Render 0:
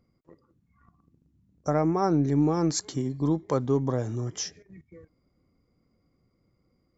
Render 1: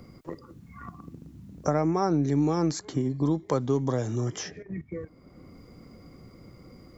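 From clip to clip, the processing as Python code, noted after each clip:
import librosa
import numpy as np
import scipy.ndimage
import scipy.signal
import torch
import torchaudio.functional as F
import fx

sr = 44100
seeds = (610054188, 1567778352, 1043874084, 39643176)

y = fx.band_squash(x, sr, depth_pct=70)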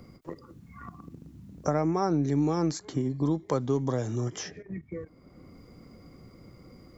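y = fx.end_taper(x, sr, db_per_s=390.0)
y = y * librosa.db_to_amplitude(-1.5)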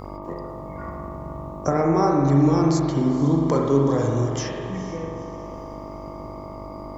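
y = fx.echo_diffused(x, sr, ms=471, feedback_pct=44, wet_db=-13.5)
y = fx.dmg_buzz(y, sr, base_hz=50.0, harmonics=25, level_db=-42.0, tilt_db=-2, odd_only=False)
y = fx.rev_spring(y, sr, rt60_s=1.6, pass_ms=(43,), chirp_ms=80, drr_db=-0.5)
y = y * librosa.db_to_amplitude(4.5)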